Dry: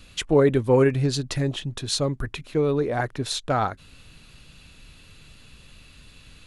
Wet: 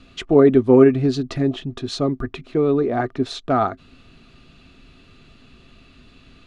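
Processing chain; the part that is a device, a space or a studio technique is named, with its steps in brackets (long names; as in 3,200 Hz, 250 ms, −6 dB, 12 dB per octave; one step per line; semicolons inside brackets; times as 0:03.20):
inside a cardboard box (low-pass filter 4,800 Hz 12 dB per octave; hollow resonant body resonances 260/370/670/1,200 Hz, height 12 dB, ringing for 50 ms)
level −1.5 dB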